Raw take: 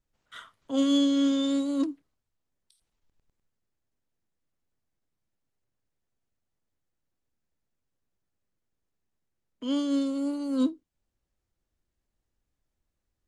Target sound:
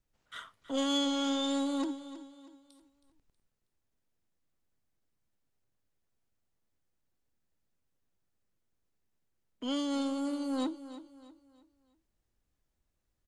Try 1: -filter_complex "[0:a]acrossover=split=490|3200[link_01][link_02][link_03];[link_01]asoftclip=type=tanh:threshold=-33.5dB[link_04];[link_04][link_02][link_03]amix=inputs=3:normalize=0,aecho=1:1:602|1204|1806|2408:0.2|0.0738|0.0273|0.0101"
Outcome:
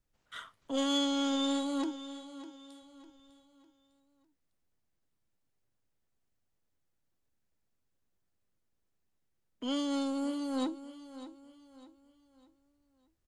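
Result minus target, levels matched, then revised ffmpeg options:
echo 282 ms late
-filter_complex "[0:a]acrossover=split=490|3200[link_01][link_02][link_03];[link_01]asoftclip=type=tanh:threshold=-33.5dB[link_04];[link_04][link_02][link_03]amix=inputs=3:normalize=0,aecho=1:1:320|640|960|1280:0.2|0.0738|0.0273|0.0101"

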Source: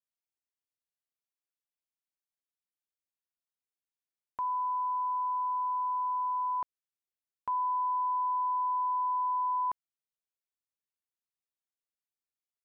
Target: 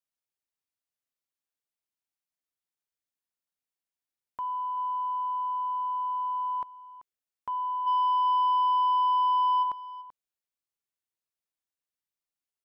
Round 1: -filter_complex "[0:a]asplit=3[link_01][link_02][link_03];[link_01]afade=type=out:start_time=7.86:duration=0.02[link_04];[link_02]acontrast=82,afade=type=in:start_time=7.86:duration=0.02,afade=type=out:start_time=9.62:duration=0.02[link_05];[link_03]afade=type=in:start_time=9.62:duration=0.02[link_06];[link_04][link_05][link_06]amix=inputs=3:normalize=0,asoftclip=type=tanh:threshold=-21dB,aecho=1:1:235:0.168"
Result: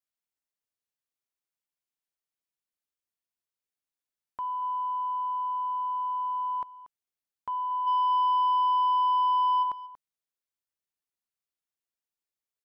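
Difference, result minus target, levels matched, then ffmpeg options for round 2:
echo 151 ms early
-filter_complex "[0:a]asplit=3[link_01][link_02][link_03];[link_01]afade=type=out:start_time=7.86:duration=0.02[link_04];[link_02]acontrast=82,afade=type=in:start_time=7.86:duration=0.02,afade=type=out:start_time=9.62:duration=0.02[link_05];[link_03]afade=type=in:start_time=9.62:duration=0.02[link_06];[link_04][link_05][link_06]amix=inputs=3:normalize=0,asoftclip=type=tanh:threshold=-21dB,aecho=1:1:386:0.168"

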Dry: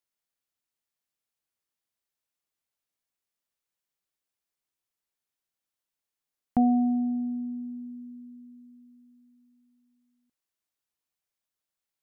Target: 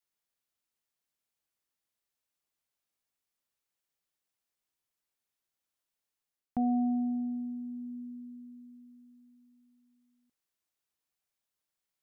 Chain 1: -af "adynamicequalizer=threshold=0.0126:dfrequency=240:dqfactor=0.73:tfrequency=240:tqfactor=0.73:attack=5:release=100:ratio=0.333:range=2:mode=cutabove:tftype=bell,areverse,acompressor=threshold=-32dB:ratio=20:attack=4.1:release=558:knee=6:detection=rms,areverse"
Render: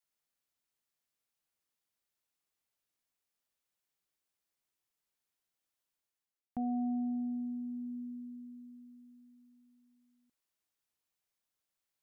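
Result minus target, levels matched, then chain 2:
downward compressor: peak gain reduction +6 dB
-af "adynamicequalizer=threshold=0.0126:dfrequency=240:dqfactor=0.73:tfrequency=240:tqfactor=0.73:attack=5:release=100:ratio=0.333:range=2:mode=cutabove:tftype=bell,areverse,acompressor=threshold=-25.5dB:ratio=20:attack=4.1:release=558:knee=6:detection=rms,areverse"

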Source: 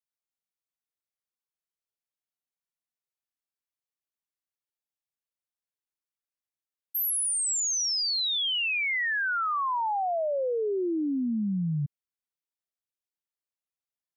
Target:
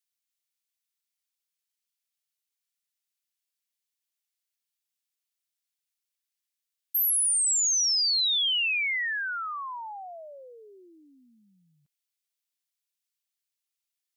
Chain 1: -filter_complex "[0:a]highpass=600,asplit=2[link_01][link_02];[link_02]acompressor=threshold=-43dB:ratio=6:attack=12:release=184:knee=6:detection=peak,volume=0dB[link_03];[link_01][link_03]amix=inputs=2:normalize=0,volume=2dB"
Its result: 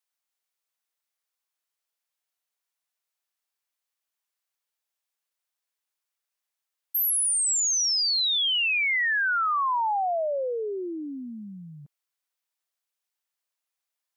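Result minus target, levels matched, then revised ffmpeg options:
500 Hz band +17.5 dB
-filter_complex "[0:a]highpass=2400,asplit=2[link_01][link_02];[link_02]acompressor=threshold=-43dB:ratio=6:attack=12:release=184:knee=6:detection=peak,volume=0dB[link_03];[link_01][link_03]amix=inputs=2:normalize=0,volume=2dB"

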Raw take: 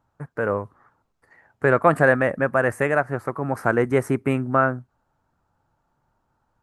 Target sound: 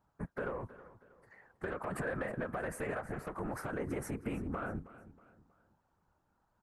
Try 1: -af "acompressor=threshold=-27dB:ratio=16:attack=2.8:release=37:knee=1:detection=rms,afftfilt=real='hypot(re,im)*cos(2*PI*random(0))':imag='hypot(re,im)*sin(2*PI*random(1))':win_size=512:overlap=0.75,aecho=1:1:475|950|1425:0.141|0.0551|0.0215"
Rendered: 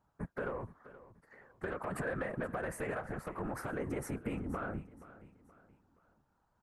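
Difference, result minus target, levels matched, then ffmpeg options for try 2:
echo 156 ms late
-af "acompressor=threshold=-27dB:ratio=16:attack=2.8:release=37:knee=1:detection=rms,afftfilt=real='hypot(re,im)*cos(2*PI*random(0))':imag='hypot(re,im)*sin(2*PI*random(1))':win_size=512:overlap=0.75,aecho=1:1:319|638|957:0.141|0.0551|0.0215"

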